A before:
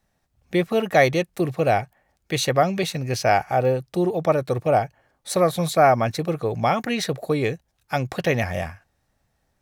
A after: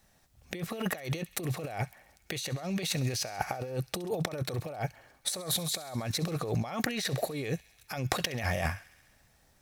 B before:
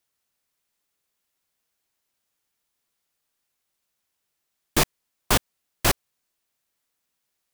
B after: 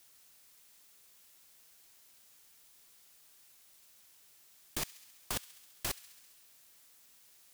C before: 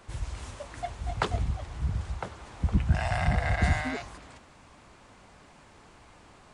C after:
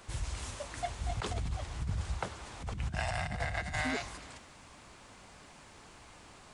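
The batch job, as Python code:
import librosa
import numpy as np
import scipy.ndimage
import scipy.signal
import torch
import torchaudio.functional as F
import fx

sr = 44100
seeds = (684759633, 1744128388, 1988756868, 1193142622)

p1 = fx.high_shelf(x, sr, hz=2700.0, db=7.0)
p2 = fx.over_compress(p1, sr, threshold_db=-30.0, ratio=-1.0)
p3 = p2 + fx.echo_wet_highpass(p2, sr, ms=67, feedback_pct=74, hz=2000.0, wet_db=-18.0, dry=0)
y = p3 * 10.0 ** (-4.5 / 20.0)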